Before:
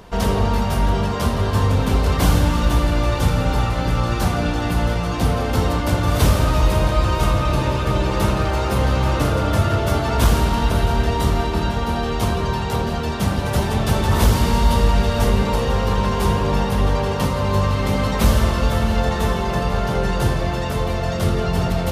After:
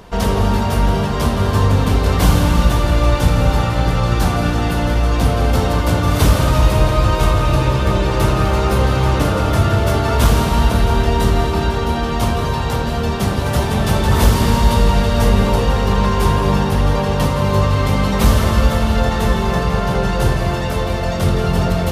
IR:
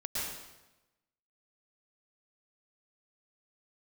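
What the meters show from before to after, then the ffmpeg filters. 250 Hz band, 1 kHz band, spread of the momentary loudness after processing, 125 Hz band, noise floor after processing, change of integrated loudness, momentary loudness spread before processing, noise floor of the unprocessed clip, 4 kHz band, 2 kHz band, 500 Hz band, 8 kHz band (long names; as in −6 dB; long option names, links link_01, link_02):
+3.5 dB, +3.0 dB, 4 LU, +3.5 dB, −19 dBFS, +3.5 dB, 4 LU, −23 dBFS, +3.0 dB, +3.0 dB, +3.0 dB, +3.0 dB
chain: -filter_complex "[0:a]asplit=2[link_01][link_02];[1:a]atrim=start_sample=2205,asetrate=29547,aresample=44100[link_03];[link_02][link_03]afir=irnorm=-1:irlink=0,volume=-13.5dB[link_04];[link_01][link_04]amix=inputs=2:normalize=0,volume=1dB"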